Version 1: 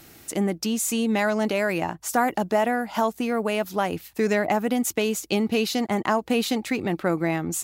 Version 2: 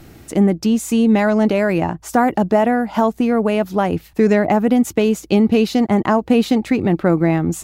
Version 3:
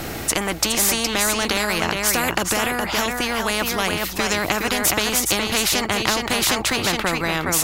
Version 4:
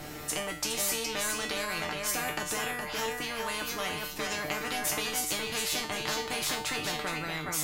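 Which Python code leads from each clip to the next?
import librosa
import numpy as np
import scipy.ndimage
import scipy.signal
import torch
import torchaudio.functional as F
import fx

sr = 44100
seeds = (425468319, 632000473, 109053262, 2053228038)

y1 = fx.tilt_eq(x, sr, slope=-2.5)
y1 = y1 * librosa.db_to_amplitude(5.0)
y2 = y1 + 10.0 ** (-8.5 / 20.0) * np.pad(y1, (int(416 * sr / 1000.0), 0))[:len(y1)]
y2 = fx.spectral_comp(y2, sr, ratio=4.0)
y2 = y2 * librosa.db_to_amplitude(1.0)
y3 = fx.comb_fb(y2, sr, f0_hz=150.0, decay_s=0.41, harmonics='all', damping=0.0, mix_pct=90)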